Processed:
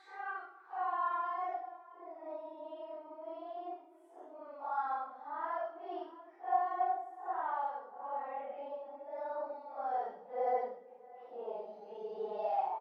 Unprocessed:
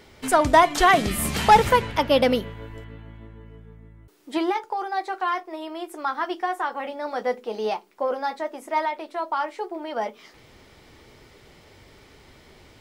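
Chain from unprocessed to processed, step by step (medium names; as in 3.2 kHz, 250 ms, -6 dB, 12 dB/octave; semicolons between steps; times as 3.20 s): speakerphone echo 140 ms, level -19 dB; band-pass sweep 5.4 kHz -> 740 Hz, 4.60–5.32 s; Paulstretch 4.7×, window 0.05 s, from 5.05 s; trim -7 dB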